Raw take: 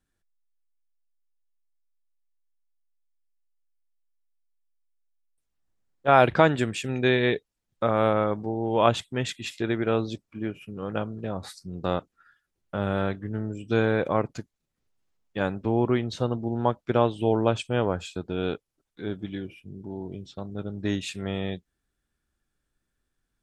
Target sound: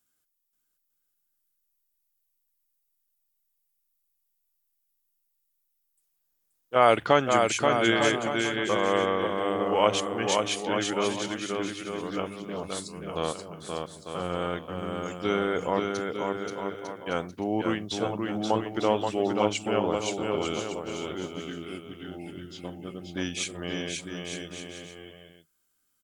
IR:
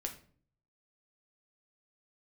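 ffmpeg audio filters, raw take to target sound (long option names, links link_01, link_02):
-af "aemphasis=mode=production:type=bsi,asetrate=39690,aresample=44100,bandreject=frequency=50:width_type=h:width=6,bandreject=frequency=100:width_type=h:width=6,aecho=1:1:530|901|1161|1342|1470:0.631|0.398|0.251|0.158|0.1,volume=-1.5dB"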